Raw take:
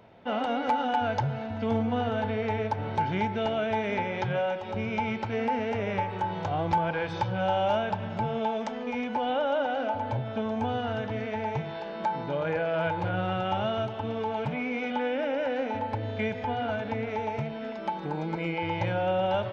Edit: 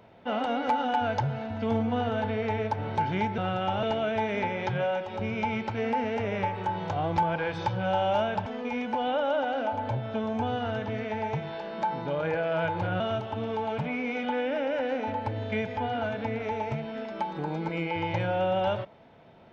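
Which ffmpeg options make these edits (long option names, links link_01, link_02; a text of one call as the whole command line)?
ffmpeg -i in.wav -filter_complex "[0:a]asplit=5[link_01][link_02][link_03][link_04][link_05];[link_01]atrim=end=3.382[link_06];[link_02]atrim=start=13.218:end=13.672[link_07];[link_03]atrim=start=3.378:end=8.012[link_08];[link_04]atrim=start=8.678:end=13.222[link_09];[link_05]atrim=start=13.668[link_10];[link_06][link_07]acrossfade=duration=0.004:curve1=hsin:curve2=hsin[link_11];[link_11][link_08]acrossfade=duration=0.004:curve1=hsin:curve2=hsin[link_12];[link_12][link_09]acrossfade=duration=0.004:curve1=hsin:curve2=hsin[link_13];[link_13][link_10]acrossfade=duration=0.004:curve1=hsin:curve2=hsin" out.wav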